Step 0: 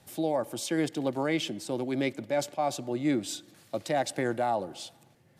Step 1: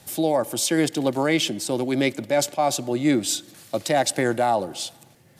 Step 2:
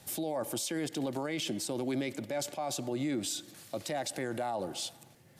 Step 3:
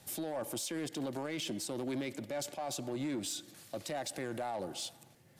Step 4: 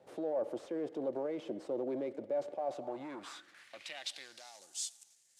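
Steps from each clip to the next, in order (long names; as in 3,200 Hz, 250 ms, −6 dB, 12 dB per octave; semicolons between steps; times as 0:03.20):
high-shelf EQ 4,200 Hz +7.5 dB; level +7 dB
brickwall limiter −21 dBFS, peak gain reduction 11 dB; level −5 dB
hard clipping −29 dBFS, distortion −19 dB; level −3 dB
variable-slope delta modulation 64 kbit/s; band-pass filter sweep 500 Hz → 7,100 Hz, 0:02.62–0:04.66; level +7 dB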